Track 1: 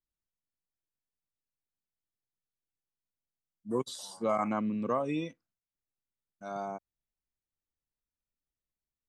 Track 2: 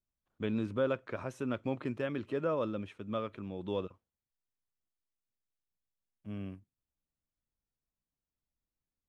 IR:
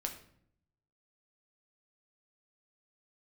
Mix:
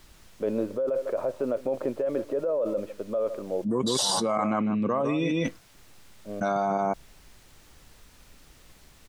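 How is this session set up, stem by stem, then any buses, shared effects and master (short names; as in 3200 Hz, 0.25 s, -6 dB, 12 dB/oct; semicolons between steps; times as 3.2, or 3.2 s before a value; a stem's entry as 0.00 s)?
+1.5 dB, 0.00 s, no send, echo send -11.5 dB, high shelf 10000 Hz -12 dB
-19.5 dB, 0.00 s, no send, echo send -19 dB, band-pass 560 Hz, Q 4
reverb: off
echo: echo 0.152 s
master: fast leveller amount 100%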